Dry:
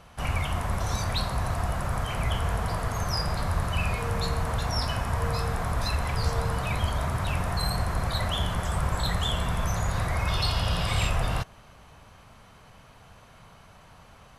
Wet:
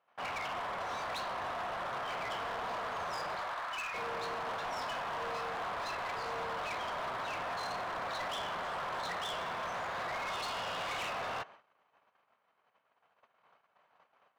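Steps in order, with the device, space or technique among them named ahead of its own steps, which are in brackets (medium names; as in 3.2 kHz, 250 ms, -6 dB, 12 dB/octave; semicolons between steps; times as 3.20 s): 3.35–3.93 s: high-pass 490 Hz -> 1.3 kHz 12 dB/octave; walkie-talkie (band-pass 500–2400 Hz; hard clipper -35 dBFS, distortion -10 dB; gate -53 dBFS, range -22 dB)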